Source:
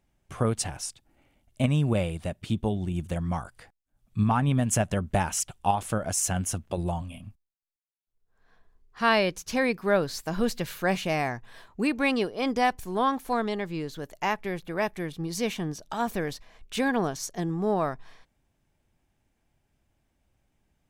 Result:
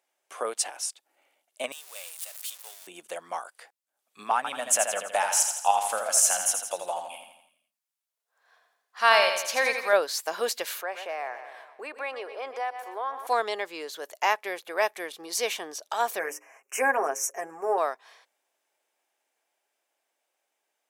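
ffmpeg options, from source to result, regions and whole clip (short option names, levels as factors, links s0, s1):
-filter_complex "[0:a]asettb=1/sr,asplit=3[s0][s1][s2];[s0]atrim=end=1.724[s3];[s1]atrim=start=1.72:end=2.87,asetpts=PTS-STARTPTS,afade=t=in:d=0.004:c=qsin,afade=t=out:st=1.146:d=0.004:c=qsin,aeval=exprs='val(0)+0.5*0.0282*sgn(val(0))':c=same,highpass=f=420:w=0.5412,highpass=f=420:w=1.3066,aderivative[s4];[s2]atrim=start=2.866[s5];[s3][s4]acrossfade=d=0.004:c1=hsin:c2=qsin[s6];[s6][s5]acrossfade=d=0.004:c1=qsin:c2=hsin,asettb=1/sr,asplit=3[s7][s8][s9];[s7]atrim=end=4.364[s10];[s8]atrim=start=4.36:end=9.93,asetpts=PTS-STARTPTS,afade=t=in:d=0.004:c=qsin,afade=t=out:st=5.566:d=0.004:c=qsin,equalizer=f=370:w=2.9:g=-13,aecho=1:1:83|166|249|332|415|498:0.473|0.241|0.123|0.0628|0.032|0.0163,atrim=end_sample=245637[s11];[s9]atrim=start=9.926[s12];[s10][s11]acrossfade=d=0.004:c1=hsin:c2=qsin[s13];[s13][s12]acrossfade=d=0.004:c1=qsin:c2=hsin,asettb=1/sr,asplit=3[s14][s15][s16];[s14]atrim=end=10.814[s17];[s15]atrim=start=10.81:end=13.27,asetpts=PTS-STARTPTS,afade=t=in:d=0.004:c=qsin,afade=t=out:st=2.456:d=0.004:c=qsin,acrossover=split=320 2300:gain=0.112 1 0.2[s18][s19][s20];[s18][s19][s20]amix=inputs=3:normalize=0,aecho=1:1:122|244|366|488|610:0.168|0.0907|0.049|0.0264|0.0143,atrim=end_sample=108486,acompressor=threshold=0.0141:ratio=2:attack=3.2:release=140:knee=1:detection=peak[s21];[s16]atrim=start=13.266[s22];[s17][s21]acrossfade=d=0.004:c1=hsin:c2=qsin[s23];[s23][s22]acrossfade=d=0.004:c1=qsin:c2=hsin,asettb=1/sr,asplit=3[s24][s25][s26];[s24]atrim=end=16.194[s27];[s25]atrim=start=16.19:end=17.78,asetpts=PTS-STARTPTS,afade=t=in:d=0.004:c=qsin,afade=t=out:st=1.586:d=0.004:c=qsin,asuperstop=centerf=3900:order=8:qfactor=1.3,bandreject=f=60:t=h:w=6,bandreject=f=120:t=h:w=6,bandreject=f=180:t=h:w=6,bandreject=f=240:t=h:w=6,bandreject=f=300:t=h:w=6,bandreject=f=360:t=h:w=6,bandreject=f=420:t=h:w=6,bandreject=f=480:t=h:w=6,bandreject=f=540:t=h:w=6,aecho=1:1:7.4:0.66,atrim=end_sample=70119[s28];[s26]atrim=start=17.776[s29];[s27][s28]acrossfade=d=0.004:c1=hsin:c2=qsin[s30];[s30][s29]acrossfade=d=0.004:c1=qsin:c2=hsin,highpass=f=470:w=0.5412,highpass=f=470:w=1.3066,equalizer=f=11000:w=0.41:g=4,dynaudnorm=f=980:g=9:m=1.5"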